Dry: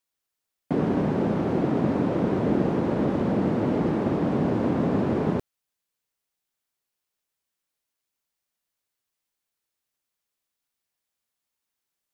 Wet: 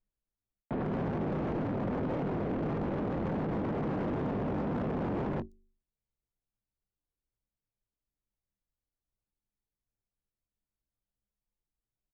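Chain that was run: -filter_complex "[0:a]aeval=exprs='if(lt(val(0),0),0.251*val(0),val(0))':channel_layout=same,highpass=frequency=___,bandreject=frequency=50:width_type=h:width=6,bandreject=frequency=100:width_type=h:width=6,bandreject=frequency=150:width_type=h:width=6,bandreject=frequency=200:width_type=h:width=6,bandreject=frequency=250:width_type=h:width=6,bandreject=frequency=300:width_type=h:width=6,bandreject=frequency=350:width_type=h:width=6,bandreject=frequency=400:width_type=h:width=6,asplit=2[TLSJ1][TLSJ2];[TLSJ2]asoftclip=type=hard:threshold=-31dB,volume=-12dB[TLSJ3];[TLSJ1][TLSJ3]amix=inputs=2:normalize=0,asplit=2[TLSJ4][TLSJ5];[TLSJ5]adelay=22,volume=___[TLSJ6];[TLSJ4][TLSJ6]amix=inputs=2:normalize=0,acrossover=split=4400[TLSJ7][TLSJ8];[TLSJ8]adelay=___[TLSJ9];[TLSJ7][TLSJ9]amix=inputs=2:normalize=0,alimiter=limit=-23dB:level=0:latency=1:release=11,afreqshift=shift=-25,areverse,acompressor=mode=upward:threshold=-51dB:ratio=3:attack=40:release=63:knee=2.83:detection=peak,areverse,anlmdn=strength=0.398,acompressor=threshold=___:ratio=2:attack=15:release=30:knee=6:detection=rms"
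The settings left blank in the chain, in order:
43, -11.5dB, 120, -33dB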